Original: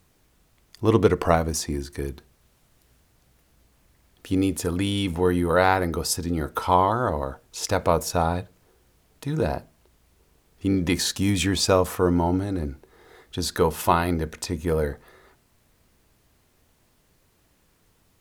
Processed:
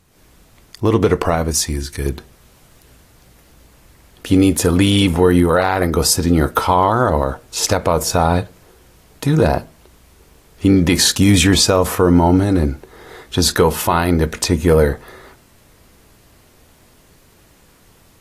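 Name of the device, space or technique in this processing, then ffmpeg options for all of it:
low-bitrate web radio: -filter_complex "[0:a]asettb=1/sr,asplit=3[a][b][c];[a]atrim=end=1.514[d];[b]atrim=start=1.51:end=2.06,asetpts=PTS-STARTPTS,afade=t=in:d=0.004:c=qsin,afade=t=out:st=0.546:d=0.004:c=qsin,equalizer=f=420:w=0.34:g=-10.5[e];[c]atrim=start=2.056[f];[d][e]acrossfade=d=0.004:c1=hsin:c2=qsin[g];[g][f]acrossfade=d=0.004:c1=qsin:c2=hsin,dynaudnorm=f=100:g=3:m=7.5dB,alimiter=limit=-8dB:level=0:latency=1:release=79,volume=5dB" -ar 32000 -c:a aac -b:a 48k

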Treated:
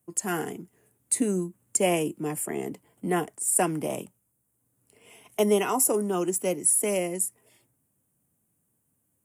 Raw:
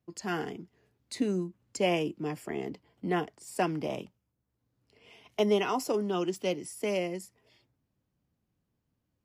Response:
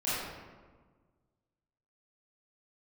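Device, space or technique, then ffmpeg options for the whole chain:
budget condenser microphone: -filter_complex "[0:a]highpass=100,highshelf=f=6.6k:t=q:w=3:g=13.5,asettb=1/sr,asplit=3[a][b][c];[a]atrim=end=5.734[d];[b]atrim=start=5.73:end=6.7,asetpts=PTS-STARTPTS,afade=t=in:d=0.004:c=qsin,afade=t=out:st=0.966:d=0.004:c=qsin,equalizer=f=3.4k:w=2.3:g=-6[e];[c]atrim=start=6.696[f];[d][e]acrossfade=d=0.004:c1=hsin:c2=qsin[g];[g][f]acrossfade=d=0.004:c1=qsin:c2=hsin,volume=3.5dB"

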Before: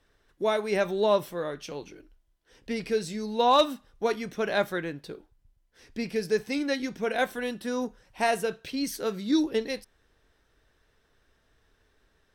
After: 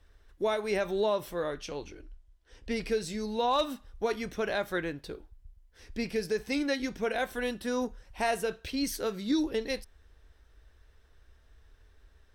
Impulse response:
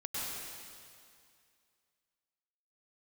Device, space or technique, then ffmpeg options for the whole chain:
car stereo with a boomy subwoofer: -filter_complex "[0:a]asettb=1/sr,asplit=3[a][b][c];[a]atrim=end=1.594[d];[b]atrim=start=1.59:end=2.72,asetpts=PTS-STARTPTS,afade=t=in:d=0.004:c=qsin,afade=t=out:st=1.126:d=0.004:c=qsin,lowpass=10k[e];[c]atrim=start=2.716[f];[d][e]acrossfade=d=0.004:c1=hsin:c2=qsin[g];[g][f]acrossfade=d=0.004:c1=qsin:c2=hsin,lowshelf=f=100:t=q:w=1.5:g=10.5,alimiter=limit=-19.5dB:level=0:latency=1:release=139"

